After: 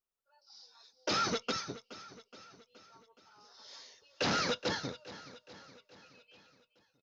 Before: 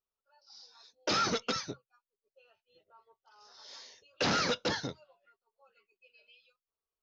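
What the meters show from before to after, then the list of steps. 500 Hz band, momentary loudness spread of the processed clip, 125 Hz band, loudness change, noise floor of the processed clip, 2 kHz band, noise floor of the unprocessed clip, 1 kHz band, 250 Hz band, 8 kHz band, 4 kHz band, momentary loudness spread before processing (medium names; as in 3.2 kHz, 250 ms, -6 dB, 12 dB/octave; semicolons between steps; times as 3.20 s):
-2.0 dB, 21 LU, -2.0 dB, -2.5 dB, -83 dBFS, -2.0 dB, under -85 dBFS, -2.0 dB, -2.0 dB, no reading, -2.0 dB, 20 LU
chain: feedback delay 421 ms, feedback 56%, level -16 dB; trim -2 dB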